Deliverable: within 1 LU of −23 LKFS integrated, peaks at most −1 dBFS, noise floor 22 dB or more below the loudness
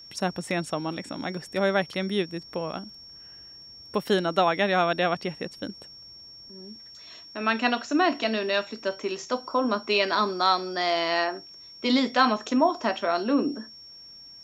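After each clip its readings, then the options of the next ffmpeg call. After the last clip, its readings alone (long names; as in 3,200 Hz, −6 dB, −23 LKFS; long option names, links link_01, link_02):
interfering tone 5,500 Hz; level of the tone −44 dBFS; integrated loudness −26.0 LKFS; sample peak −7.5 dBFS; target loudness −23.0 LKFS
→ -af "bandreject=frequency=5500:width=30"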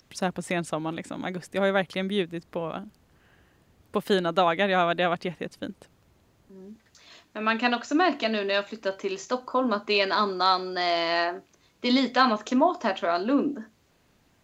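interfering tone none found; integrated loudness −26.0 LKFS; sample peak −7.5 dBFS; target loudness −23.0 LKFS
→ -af "volume=3dB"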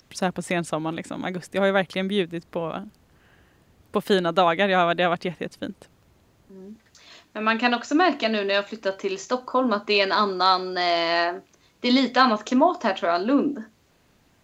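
integrated loudness −23.0 LKFS; sample peak −4.5 dBFS; background noise floor −61 dBFS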